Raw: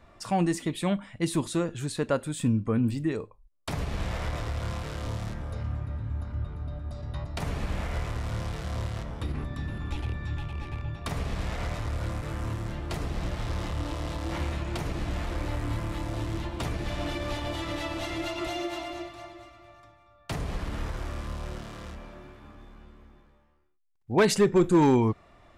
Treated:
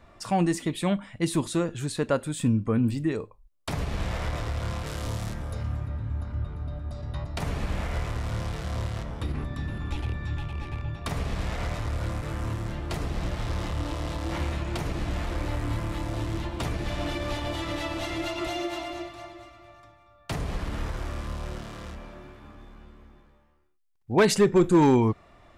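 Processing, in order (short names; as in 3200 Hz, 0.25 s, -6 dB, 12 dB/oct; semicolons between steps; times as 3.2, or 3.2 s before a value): 4.86–5.87 high shelf 6600 Hz +10 dB; gain +1.5 dB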